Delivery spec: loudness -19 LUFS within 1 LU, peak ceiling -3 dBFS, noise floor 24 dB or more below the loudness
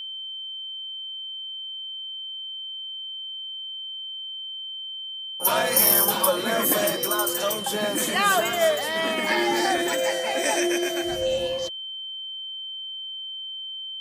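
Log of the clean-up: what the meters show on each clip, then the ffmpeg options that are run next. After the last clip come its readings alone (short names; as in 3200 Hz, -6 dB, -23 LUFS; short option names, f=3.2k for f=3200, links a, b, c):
steady tone 3100 Hz; tone level -32 dBFS; loudness -24.5 LUFS; peak -4.5 dBFS; loudness target -19.0 LUFS
-> -af "bandreject=f=3.1k:w=30"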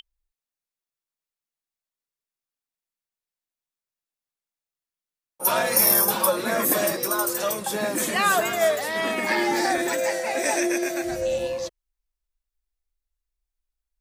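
steady tone none; loudness -22.5 LUFS; peak -4.5 dBFS; loudness target -19.0 LUFS
-> -af "volume=3.5dB,alimiter=limit=-3dB:level=0:latency=1"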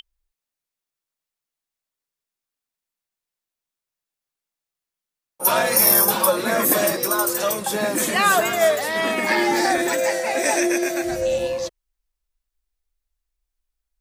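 loudness -19.0 LUFS; peak -3.0 dBFS; noise floor -88 dBFS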